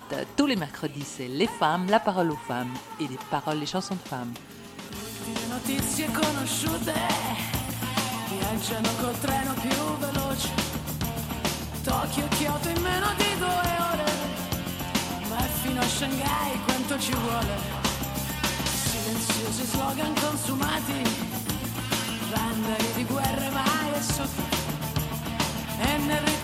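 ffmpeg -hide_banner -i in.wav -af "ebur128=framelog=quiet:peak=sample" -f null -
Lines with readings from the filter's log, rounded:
Integrated loudness:
  I:         -27.3 LUFS
  Threshold: -37.4 LUFS
Loudness range:
  LRA:         2.7 LU
  Threshold: -47.4 LUFS
  LRA low:   -29.0 LUFS
  LRA high:  -26.4 LUFS
Sample peak:
  Peak:       -7.8 dBFS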